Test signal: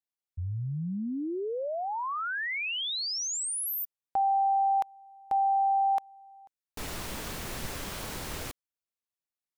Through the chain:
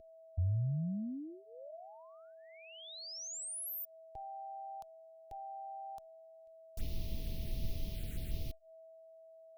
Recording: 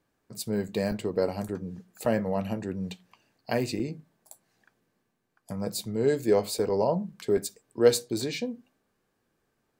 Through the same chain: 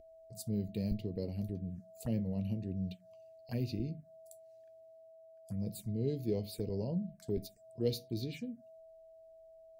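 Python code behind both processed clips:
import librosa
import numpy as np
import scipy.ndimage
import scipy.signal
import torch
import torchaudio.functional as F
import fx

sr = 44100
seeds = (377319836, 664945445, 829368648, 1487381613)

y = x + 10.0 ** (-35.0 / 20.0) * np.sin(2.0 * np.pi * 650.0 * np.arange(len(x)) / sr)
y = fx.tone_stack(y, sr, knobs='10-0-1')
y = fx.env_phaser(y, sr, low_hz=160.0, high_hz=1500.0, full_db=-45.0)
y = y * 10.0 ** (11.5 / 20.0)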